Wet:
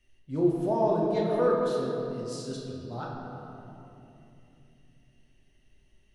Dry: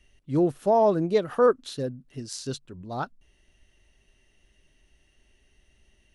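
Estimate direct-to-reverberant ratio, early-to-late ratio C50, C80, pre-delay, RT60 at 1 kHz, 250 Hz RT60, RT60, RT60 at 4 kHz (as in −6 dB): −3.5 dB, 0.5 dB, 1.5 dB, 8 ms, 2.6 s, 4.4 s, 2.9 s, 1.8 s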